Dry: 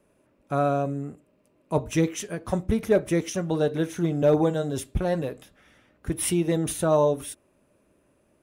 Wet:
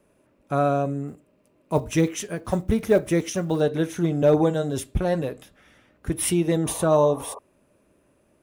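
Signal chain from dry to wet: 1.08–3.63 s: block-companded coder 7-bit; 6.66–7.39 s: painted sound noise 400–1200 Hz -41 dBFS; trim +2 dB

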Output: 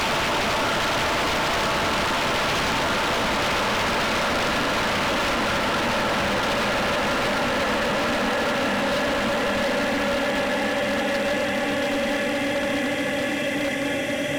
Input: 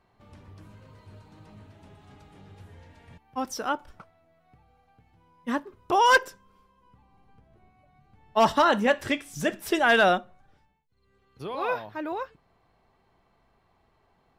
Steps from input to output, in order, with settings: Paulstretch 22×, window 1.00 s, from 8.53 s; wavefolder -22 dBFS; trim +4 dB

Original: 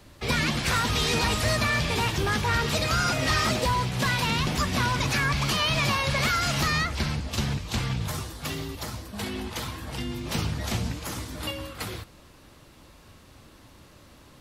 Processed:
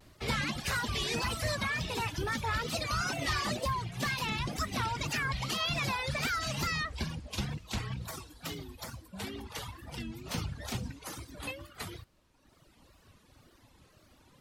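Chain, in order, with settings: reverb removal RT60 1.5 s; wow and flutter 140 cents; trim -6 dB

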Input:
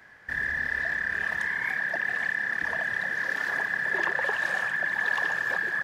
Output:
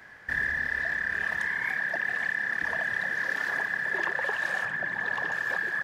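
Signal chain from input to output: gain riding within 5 dB 0.5 s; 4.65–5.32 s: tilt EQ -2 dB/octave; trim -1 dB

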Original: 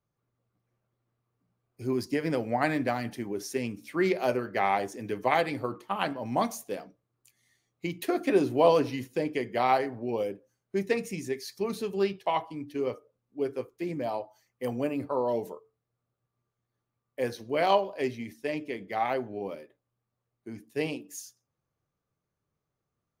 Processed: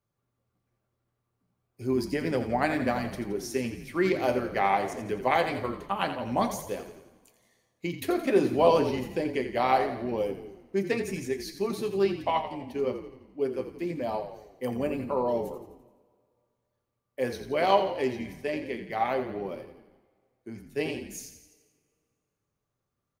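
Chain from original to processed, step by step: frequency-shifting echo 85 ms, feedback 55%, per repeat -38 Hz, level -10 dB; two-slope reverb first 0.22 s, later 2.2 s, from -21 dB, DRR 11.5 dB

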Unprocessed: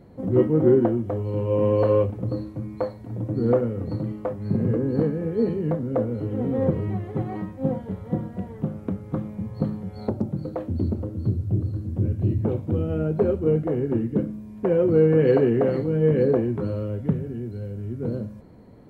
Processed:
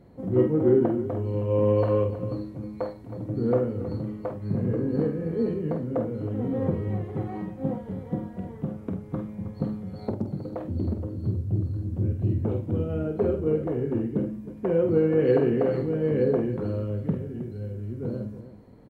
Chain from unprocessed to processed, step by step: multi-tap echo 48/317 ms -6.5/-13 dB; trim -4 dB

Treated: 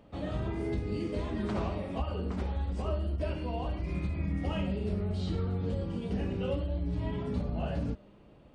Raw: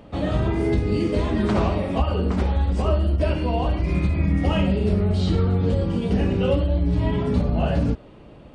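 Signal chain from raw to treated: feedback comb 200 Hz, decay 1.3 s, mix 40%; trim -7.5 dB

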